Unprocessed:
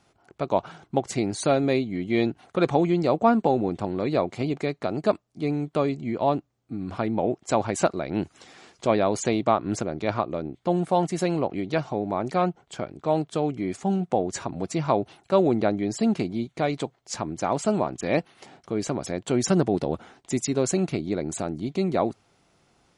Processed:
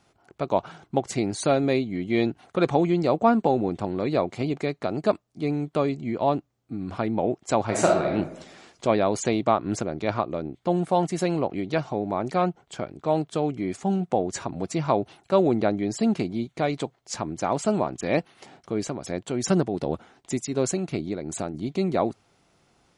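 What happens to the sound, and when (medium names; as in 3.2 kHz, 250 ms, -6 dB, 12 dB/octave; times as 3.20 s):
7.64–8.12 s: reverb throw, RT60 0.87 s, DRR -1 dB
18.79–21.54 s: tremolo 2.7 Hz, depth 44%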